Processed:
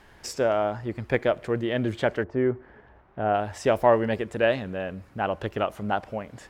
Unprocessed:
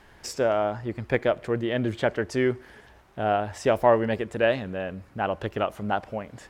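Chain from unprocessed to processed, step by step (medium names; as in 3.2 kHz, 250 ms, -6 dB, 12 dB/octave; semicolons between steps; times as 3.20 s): 2.23–3.33 s: low-pass 1.1 kHz -> 2 kHz 12 dB/octave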